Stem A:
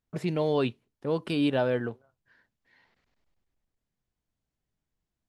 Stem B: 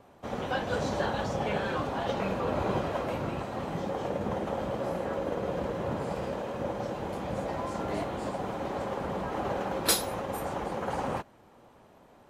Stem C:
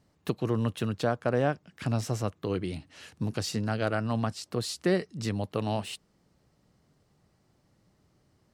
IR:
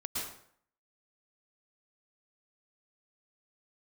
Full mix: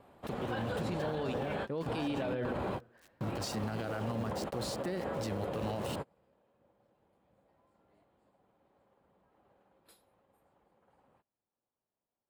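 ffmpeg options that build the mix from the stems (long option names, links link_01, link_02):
-filter_complex "[0:a]adelay=650,volume=-5.5dB,asplit=2[link_01][link_02];[link_02]volume=-9dB[link_03];[1:a]equalizer=frequency=6000:width_type=o:width=0.31:gain=-12,volume=-3.5dB[link_04];[2:a]aeval=exprs='val(0)*gte(abs(val(0)),0.00944)':channel_layout=same,volume=4dB,afade=type=out:start_time=1.53:duration=0.47:silence=0.421697,afade=type=in:start_time=2.98:duration=0.2:silence=0.237137,asplit=2[link_05][link_06];[link_06]apad=whole_len=542240[link_07];[link_04][link_07]sidechaingate=range=-34dB:threshold=-50dB:ratio=16:detection=peak[link_08];[3:a]atrim=start_sample=2205[link_09];[link_03][link_09]afir=irnorm=-1:irlink=0[link_10];[link_01][link_08][link_05][link_10]amix=inputs=4:normalize=0,alimiter=level_in=3dB:limit=-24dB:level=0:latency=1:release=42,volume=-3dB"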